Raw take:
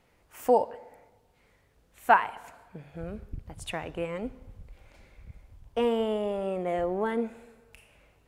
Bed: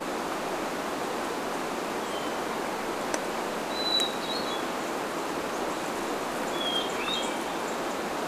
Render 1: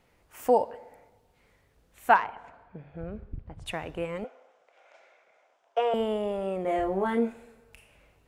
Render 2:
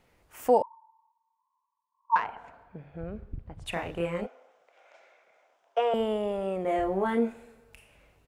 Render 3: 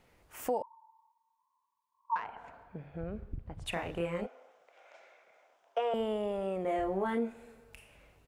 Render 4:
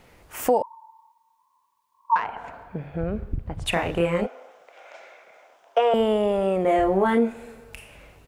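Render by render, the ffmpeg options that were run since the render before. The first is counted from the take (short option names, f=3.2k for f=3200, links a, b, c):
-filter_complex "[0:a]asettb=1/sr,asplit=3[a][b][c];[a]atrim=end=2.154[d];[b]atrim=start=2.15:end=3.66,asetpts=PTS-STARTPTS,afade=t=in:d=0.004:c=qsin,afade=t=out:st=1.506:d=0.004:c=qsin,adynamicsmooth=sensitivity=1:basefreq=2.7k[e];[c]atrim=start=3.656[f];[d][e]acrossfade=d=0.004:c1=hsin:c2=qsin[g];[g][f]acrossfade=d=0.004:c1=qsin:c2=hsin,asettb=1/sr,asplit=3[h][i][j];[h]atrim=end=4.244[k];[i]atrim=start=4.24:end=5.94,asetpts=PTS-STARTPTS,afade=t=in:d=0.004:c=qsin,afade=t=out:st=1.696:d=0.004:c=qsin,highpass=f=470:w=0.5412,highpass=f=470:w=1.3066,equalizer=f=680:t=q:w=4:g=10,equalizer=f=1.4k:t=q:w=4:g=6,equalizer=f=4.4k:t=q:w=4:g=-7,lowpass=f=6.8k:w=0.5412,lowpass=f=6.8k:w=1.3066[l];[j]atrim=start=5.936[m];[k][l]acrossfade=d=0.004:c1=hsin:c2=qsin[n];[n][m]acrossfade=d=0.004:c1=qsin:c2=hsin,asettb=1/sr,asplit=3[o][p][q];[o]atrim=end=6.624[r];[p]atrim=start=6.62:end=7.33,asetpts=PTS-STARTPTS,afade=t=in:d=0.004:c=qsin,afade=t=out:st=0.706:d=0.004:c=qsin,asplit=2[s][t];[t]adelay=26,volume=-2.5dB[u];[s][u]amix=inputs=2:normalize=0,atrim=end_sample=31311[v];[q]atrim=start=7.326[w];[r][v]acrossfade=d=0.004:c1=hsin:c2=qsin[x];[x][w]acrossfade=d=0.004:c1=qsin:c2=hsin"
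-filter_complex "[0:a]asettb=1/sr,asplit=3[a][b][c];[a]atrim=end=0.624[d];[b]atrim=start=0.62:end=2.16,asetpts=PTS-STARTPTS,afade=t=in:d=0.004:c=qsin,afade=t=out:st=1.536:d=0.004:c=qsin,asuperpass=centerf=1000:order=20:qfactor=4[e];[c]atrim=start=2.156[f];[d][e]acrossfade=d=0.004:c1=hsin:c2=qsin[g];[g][f]acrossfade=d=0.004:c1=qsin:c2=hsin,asplit=3[h][i][j];[h]afade=t=out:st=3.72:d=0.02[k];[i]asplit=2[l][m];[m]adelay=29,volume=-2dB[n];[l][n]amix=inputs=2:normalize=0,afade=t=in:st=3.72:d=0.02,afade=t=out:st=4.25:d=0.02[o];[j]afade=t=in:st=4.25:d=0.02[p];[k][o][p]amix=inputs=3:normalize=0"
-af "alimiter=limit=-17dB:level=0:latency=1:release=447,acompressor=threshold=-37dB:ratio=1.5"
-af "volume=12dB"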